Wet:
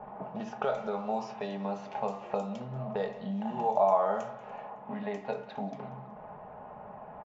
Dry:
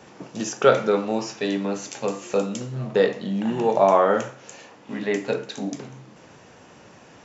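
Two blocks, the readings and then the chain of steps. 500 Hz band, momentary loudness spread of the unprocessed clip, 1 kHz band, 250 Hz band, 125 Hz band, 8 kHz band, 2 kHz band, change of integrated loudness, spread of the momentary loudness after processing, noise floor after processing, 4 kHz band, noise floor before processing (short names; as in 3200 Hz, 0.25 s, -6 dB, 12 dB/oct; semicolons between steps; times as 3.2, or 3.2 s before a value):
-10.5 dB, 16 LU, -6.0 dB, -10.5 dB, -9.0 dB, n/a, -14.5 dB, -10.5 dB, 19 LU, -47 dBFS, under -15 dB, -49 dBFS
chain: low shelf 62 Hz +12 dB; comb 4.8 ms, depth 47%; de-hum 57.69 Hz, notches 4; low-pass opened by the level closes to 1400 Hz, open at -15.5 dBFS; compressor 2.5:1, threshold -35 dBFS, peak gain reduction 16.5 dB; EQ curve 210 Hz 0 dB, 320 Hz -9 dB, 760 Hz +13 dB, 1600 Hz -2 dB; low-pass opened by the level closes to 2100 Hz, open at -21.5 dBFS; on a send: feedback echo 0.186 s, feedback 40%, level -19 dB; on the sum: gain -2.5 dB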